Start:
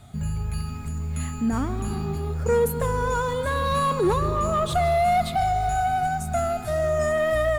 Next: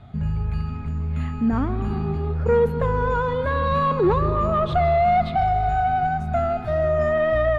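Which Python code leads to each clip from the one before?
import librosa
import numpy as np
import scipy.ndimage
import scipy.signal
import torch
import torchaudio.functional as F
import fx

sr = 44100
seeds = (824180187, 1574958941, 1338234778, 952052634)

y = fx.air_absorb(x, sr, metres=320.0)
y = y * librosa.db_to_amplitude(3.5)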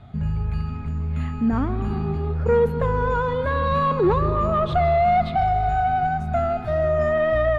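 y = x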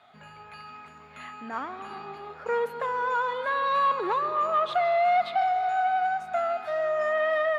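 y = scipy.signal.sosfilt(scipy.signal.butter(2, 800.0, 'highpass', fs=sr, output='sos'), x)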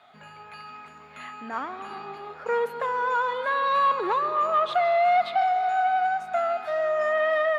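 y = fx.highpass(x, sr, hz=140.0, slope=6)
y = y * librosa.db_to_amplitude(2.0)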